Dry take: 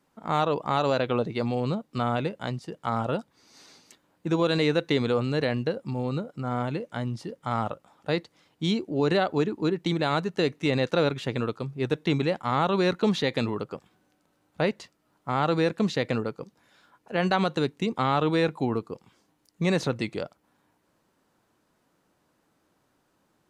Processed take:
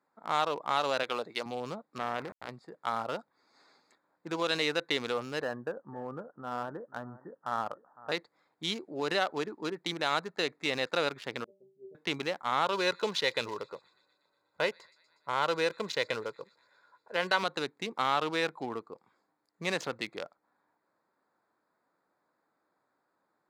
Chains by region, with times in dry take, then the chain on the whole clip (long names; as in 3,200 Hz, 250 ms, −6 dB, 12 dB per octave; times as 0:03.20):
0:01.03–0:01.46: high-pass filter 300 Hz 6 dB per octave + high-shelf EQ 5,300 Hz +11.5 dB
0:01.98–0:02.49: hold until the input has moved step −30.5 dBFS + low-pass filter 2,400 Hz + transient designer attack −11 dB, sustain +2 dB
0:05.42–0:08.12: Butterworth low-pass 1,800 Hz 96 dB per octave + single-tap delay 506 ms −18 dB
0:11.44–0:11.95: Butterworth low-pass 610 Hz 48 dB per octave + stiff-string resonator 190 Hz, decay 0.43 s, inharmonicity 0.008
0:12.65–0:17.43: comb filter 2 ms, depth 48% + delay with a high-pass on its return 121 ms, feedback 67%, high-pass 4,300 Hz, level −8 dB
whole clip: adaptive Wiener filter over 15 samples; high-pass filter 1,400 Hz 6 dB per octave; level +2 dB